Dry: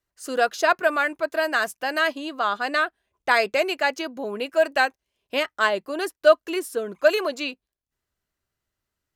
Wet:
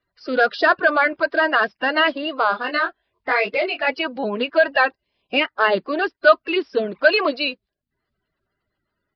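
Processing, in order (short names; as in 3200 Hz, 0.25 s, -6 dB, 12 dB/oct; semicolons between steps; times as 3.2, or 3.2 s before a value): bin magnitudes rounded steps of 30 dB; downsampling 11025 Hz; in parallel at +1 dB: limiter -15 dBFS, peak gain reduction 11 dB; 2.51–3.86 on the sum: detuned doubles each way 21 cents -> 37 cents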